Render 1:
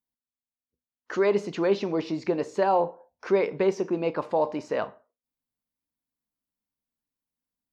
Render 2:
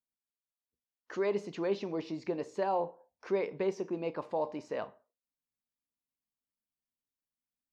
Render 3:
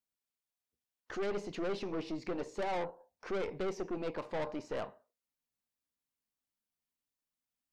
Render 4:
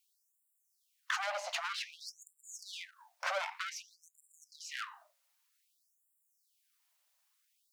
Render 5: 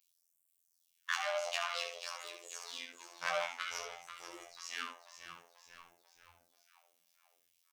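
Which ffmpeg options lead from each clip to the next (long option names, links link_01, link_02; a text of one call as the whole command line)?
ffmpeg -i in.wav -af "equalizer=frequency=1400:width_type=o:width=0.36:gain=-3.5,volume=-8.5dB" out.wav
ffmpeg -i in.wav -af "aeval=exprs='(tanh(63.1*val(0)+0.55)-tanh(0.55))/63.1':channel_layout=same,volume=3.5dB" out.wav
ffmpeg -i in.wav -af "acompressor=threshold=-39dB:ratio=6,aeval=exprs='clip(val(0),-1,0.00237)':channel_layout=same,afftfilt=real='re*gte(b*sr/1024,530*pow(7300/530,0.5+0.5*sin(2*PI*0.53*pts/sr)))':imag='im*gte(b*sr/1024,530*pow(7300/530,0.5+0.5*sin(2*PI*0.53*pts/sr)))':win_size=1024:overlap=0.75,volume=15dB" out.wav
ffmpeg -i in.wav -filter_complex "[0:a]asplit=2[link_01][link_02];[link_02]asplit=6[link_03][link_04][link_05][link_06][link_07][link_08];[link_03]adelay=489,afreqshift=-110,volume=-10dB[link_09];[link_04]adelay=978,afreqshift=-220,volume=-15.7dB[link_10];[link_05]adelay=1467,afreqshift=-330,volume=-21.4dB[link_11];[link_06]adelay=1956,afreqshift=-440,volume=-27dB[link_12];[link_07]adelay=2445,afreqshift=-550,volume=-32.7dB[link_13];[link_08]adelay=2934,afreqshift=-660,volume=-38.4dB[link_14];[link_09][link_10][link_11][link_12][link_13][link_14]amix=inputs=6:normalize=0[link_15];[link_01][link_15]amix=inputs=2:normalize=0,afftfilt=real='hypot(re,im)*cos(PI*b)':imag='0':win_size=2048:overlap=0.75,asplit=2[link_16][link_17];[link_17]aecho=0:1:25|70:0.376|0.422[link_18];[link_16][link_18]amix=inputs=2:normalize=0,volume=2.5dB" out.wav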